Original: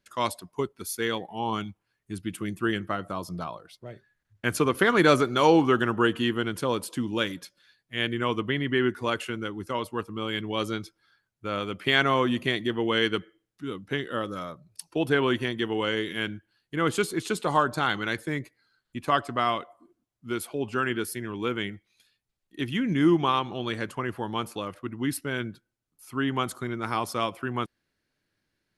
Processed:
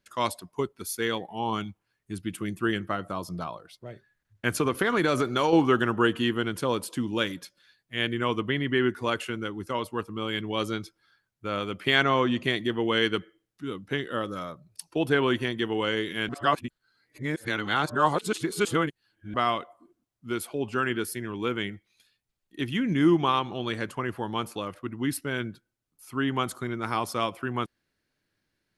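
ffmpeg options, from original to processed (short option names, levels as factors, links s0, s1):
-filter_complex "[0:a]asettb=1/sr,asplit=3[s0][s1][s2];[s0]atrim=end=4.554[s3];[s1]atrim=start=4.55:end=5.53,asetpts=PTS-STARTPTS,afade=t=in:d=0.004:c=qsin,afade=t=out:st=0.976:d=0.004:c=qsin,acompressor=threshold=0.112:ratio=6:attack=3.2:release=140:knee=1:detection=peak[s4];[s2]atrim=start=5.526[s5];[s3][s4]acrossfade=d=0.004:c1=hsin:c2=qsin[s6];[s6][s5]acrossfade=d=0.004:c1=qsin:c2=hsin,asettb=1/sr,asplit=3[s7][s8][s9];[s7]atrim=end=12.034[s10];[s8]atrim=start=12.03:end=12.43,asetpts=PTS-STARTPTS,afade=t=in:d=0.004:c=qsin,afade=t=out:st=0.396:d=0.004:c=qsin,lowpass=f=7200:w=0.5412,lowpass=f=7200:w=1.3066[s11];[s9]atrim=start=12.426[s12];[s10][s11]acrossfade=d=0.004:c1=hsin:c2=qsin[s13];[s13][s12]acrossfade=d=0.004:c1=qsin:c2=hsin,asplit=3[s14][s15][s16];[s14]atrim=end=16.292[s17];[s15]atrim=start=16.288:end=19.342,asetpts=PTS-STARTPTS,areverse[s18];[s16]atrim=start=19.338[s19];[s17][s18]acrossfade=d=0.004:c1=hsin:c2=hsin[s20];[s20][s19]acrossfade=d=0.004:c1=hsin:c2=hsin"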